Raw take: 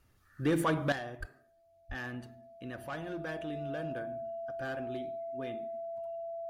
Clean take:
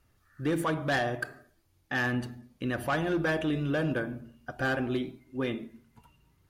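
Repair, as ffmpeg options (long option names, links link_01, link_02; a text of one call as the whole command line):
ffmpeg -i in.wav -filter_complex "[0:a]bandreject=frequency=670:width=30,asplit=3[link_01][link_02][link_03];[link_01]afade=type=out:start_time=1.19:duration=0.02[link_04];[link_02]highpass=frequency=140:width=0.5412,highpass=frequency=140:width=1.3066,afade=type=in:start_time=1.19:duration=0.02,afade=type=out:start_time=1.31:duration=0.02[link_05];[link_03]afade=type=in:start_time=1.31:duration=0.02[link_06];[link_04][link_05][link_06]amix=inputs=3:normalize=0,asplit=3[link_07][link_08][link_09];[link_07]afade=type=out:start_time=1.88:duration=0.02[link_10];[link_08]highpass=frequency=140:width=0.5412,highpass=frequency=140:width=1.3066,afade=type=in:start_time=1.88:duration=0.02,afade=type=out:start_time=2:duration=0.02[link_11];[link_09]afade=type=in:start_time=2:duration=0.02[link_12];[link_10][link_11][link_12]amix=inputs=3:normalize=0,asetnsamples=nb_out_samples=441:pad=0,asendcmd='0.92 volume volume 11.5dB',volume=0dB" out.wav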